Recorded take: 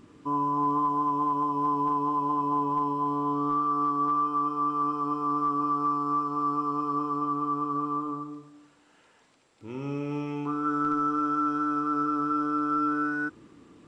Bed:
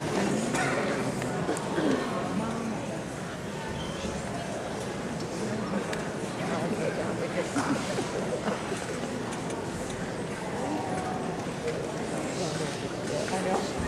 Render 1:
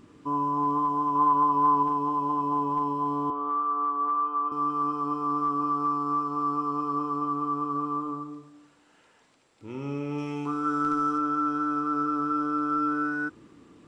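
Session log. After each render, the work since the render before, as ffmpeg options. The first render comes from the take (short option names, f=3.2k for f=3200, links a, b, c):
-filter_complex "[0:a]asettb=1/sr,asplit=3[a][b][c];[a]atrim=end=1.154[d];[b]atrim=start=1.15:end=1.83,asetpts=PTS-STARTPTS,afade=t=in:d=0.004:c=qsin,afade=t=out:st=0.676:d=0.004:c=qsin,equalizer=f=1.3k:w=1.2:g=8[e];[c]atrim=start=1.826[f];[d][e]acrossfade=d=0.004:c1=hsin:c2=qsin[g];[g][f]acrossfade=d=0.004:c1=qsin:c2=hsin,asettb=1/sr,asplit=3[h][i][j];[h]atrim=end=3.304[k];[i]atrim=start=3.3:end=4.52,asetpts=PTS-STARTPTS,afade=t=in:d=0.004:c=qsin,afade=t=out:st=1.216:d=0.004:c=qsin,highpass=460,lowpass=2.4k[l];[j]atrim=start=4.516[m];[k][l]acrossfade=d=0.004:c1=hsin:c2=qsin[n];[n][m]acrossfade=d=0.004:c1=qsin:c2=hsin,asettb=1/sr,asplit=3[o][p][q];[o]atrim=end=10.184[r];[p]atrim=start=10.18:end=11.18,asetpts=PTS-STARTPTS,afade=t=in:d=0.004:c=qsin,afade=t=out:st=0.996:d=0.004:c=qsin,highshelf=f=4.2k:g=9.5[s];[q]atrim=start=11.176[t];[r][s]acrossfade=d=0.004:c1=hsin:c2=qsin[u];[u][t]acrossfade=d=0.004:c1=qsin:c2=hsin"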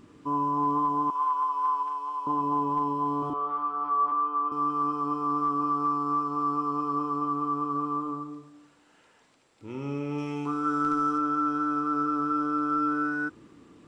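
-filter_complex "[0:a]asettb=1/sr,asplit=3[a][b][c];[a]atrim=end=1.104[d];[b]atrim=start=1.1:end=2.27,asetpts=PTS-STARTPTS,afade=t=in:d=0.004:c=qsin,afade=t=out:st=1.166:d=0.004:c=qsin,highpass=1.2k[e];[c]atrim=start=2.266[f];[d][e]acrossfade=d=0.004:c1=hsin:c2=qsin[g];[g][f]acrossfade=d=0.004:c1=qsin:c2=hsin,asettb=1/sr,asplit=3[h][i][j];[h]atrim=end=3.194[k];[i]atrim=start=3.19:end=4.12,asetpts=PTS-STARTPTS,afade=t=in:d=0.004:c=qsin,afade=t=out:st=0.926:d=0.004:c=qsin,asplit=2[l][m];[m]adelay=33,volume=-2dB[n];[l][n]amix=inputs=2:normalize=0,atrim=end_sample=41013[o];[j]atrim=start=4.116[p];[k][o]acrossfade=d=0.004:c1=hsin:c2=qsin[q];[q][p]acrossfade=d=0.004:c1=qsin:c2=hsin"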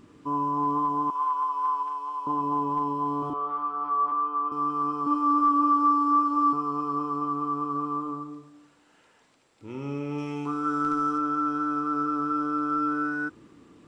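-filter_complex "[0:a]asettb=1/sr,asplit=3[a][b][c];[a]atrim=end=5.064[d];[b]atrim=start=5.06:end=6.53,asetpts=PTS-STARTPTS,afade=t=in:d=0.004:c=qsin,afade=t=out:st=1.466:d=0.004:c=qsin,aecho=1:1:3.5:0.99,atrim=end_sample=64827[e];[c]atrim=start=6.526[f];[d][e]acrossfade=d=0.004:c1=hsin:c2=qsin[g];[g][f]acrossfade=d=0.004:c1=qsin:c2=hsin"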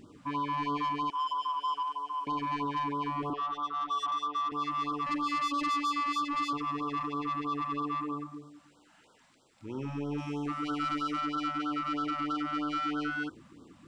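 -af "asoftclip=type=tanh:threshold=-27.5dB,afftfilt=real='re*(1-between(b*sr/1024,340*pow(2200/340,0.5+0.5*sin(2*PI*3.1*pts/sr))/1.41,340*pow(2200/340,0.5+0.5*sin(2*PI*3.1*pts/sr))*1.41))':imag='im*(1-between(b*sr/1024,340*pow(2200/340,0.5+0.5*sin(2*PI*3.1*pts/sr))/1.41,340*pow(2200/340,0.5+0.5*sin(2*PI*3.1*pts/sr))*1.41))':win_size=1024:overlap=0.75"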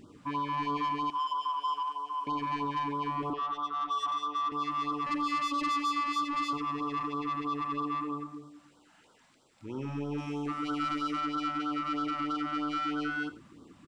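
-af "aecho=1:1:85:0.15"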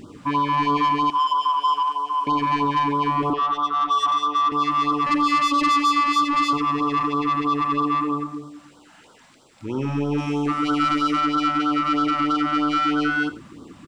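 -af "volume=11.5dB"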